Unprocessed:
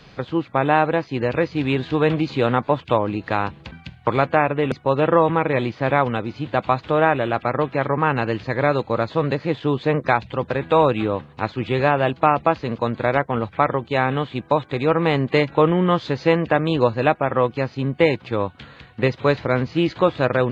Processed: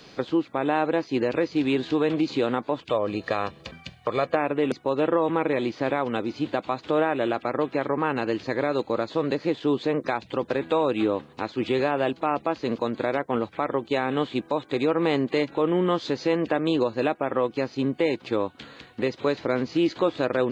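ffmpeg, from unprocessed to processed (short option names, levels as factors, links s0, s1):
-filter_complex "[0:a]asettb=1/sr,asplit=3[s0][s1][s2];[s0]atrim=end=2.904[s3];[s1]atrim=start=2.9:end=4.35,asetpts=PTS-STARTPTS,afade=t=in:d=0.004:c=qsin,afade=t=out:st=1.446:d=0.004:c=qsin,aecho=1:1:1.7:0.53,atrim=end_sample=63945[s4];[s2]atrim=start=4.346[s5];[s3][s4]acrossfade=d=0.004:c1=hsin:c2=qsin[s6];[s6][s5]acrossfade=d=0.004:c1=qsin:c2=hsin,equalizer=f=290:w=0.98:g=9,alimiter=limit=0.376:level=0:latency=1:release=223,bass=f=250:g=-9,treble=f=4000:g=10,volume=0.708"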